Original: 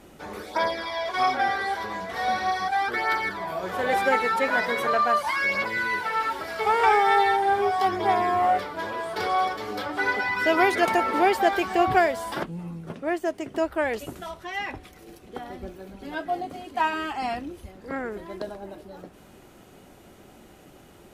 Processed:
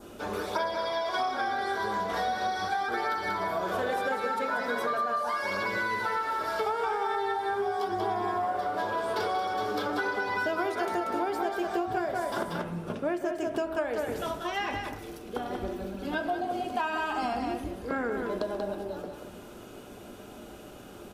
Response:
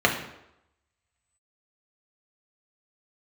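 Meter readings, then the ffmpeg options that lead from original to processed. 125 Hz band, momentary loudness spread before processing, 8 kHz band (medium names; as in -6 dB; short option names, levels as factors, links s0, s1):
-2.0 dB, 17 LU, -4.0 dB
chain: -filter_complex "[0:a]aecho=1:1:186:0.501,adynamicequalizer=threshold=0.00631:dfrequency=2600:dqfactor=2.3:tfrequency=2600:tqfactor=2.3:attack=5:release=100:ratio=0.375:range=3.5:mode=cutabove:tftype=bell,bandreject=f=45.76:t=h:w=4,bandreject=f=91.52:t=h:w=4,bandreject=f=137.28:t=h:w=4,bandreject=f=183.04:t=h:w=4,bandreject=f=228.8:t=h:w=4,bandreject=f=274.56:t=h:w=4,bandreject=f=320.32:t=h:w=4,bandreject=f=366.08:t=h:w=4,bandreject=f=411.84:t=h:w=4,bandreject=f=457.6:t=h:w=4,bandreject=f=503.36:t=h:w=4,bandreject=f=549.12:t=h:w=4,bandreject=f=594.88:t=h:w=4,bandreject=f=640.64:t=h:w=4,bandreject=f=686.4:t=h:w=4,bandreject=f=732.16:t=h:w=4,bandreject=f=777.92:t=h:w=4,bandreject=f=823.68:t=h:w=4,asplit=2[s0][s1];[1:a]atrim=start_sample=2205,asetrate=37926,aresample=44100[s2];[s1][s2]afir=irnorm=-1:irlink=0,volume=0.075[s3];[s0][s3]amix=inputs=2:normalize=0,acompressor=threshold=0.0398:ratio=10,volume=1.19"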